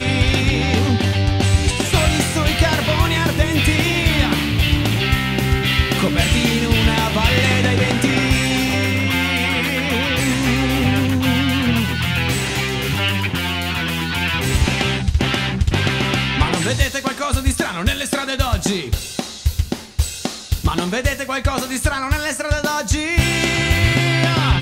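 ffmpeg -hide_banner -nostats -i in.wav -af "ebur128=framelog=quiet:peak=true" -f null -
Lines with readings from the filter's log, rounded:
Integrated loudness:
  I:         -17.8 LUFS
  Threshold: -27.8 LUFS
Loudness range:
  LRA:         5.0 LU
  Threshold: -37.9 LUFS
  LRA low:   -21.2 LUFS
  LRA high:  -16.3 LUFS
True peak:
  Peak:       -2.6 dBFS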